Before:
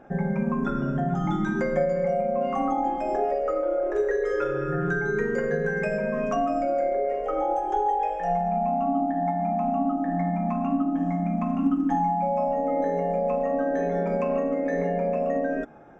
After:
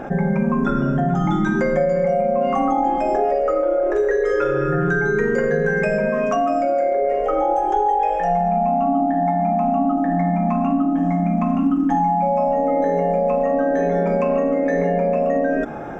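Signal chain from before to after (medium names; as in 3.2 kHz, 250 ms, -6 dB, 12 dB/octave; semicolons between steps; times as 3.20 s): 6.09–7.02 s: bass shelf 140 Hz -11.5 dB; level flattener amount 50%; trim +3.5 dB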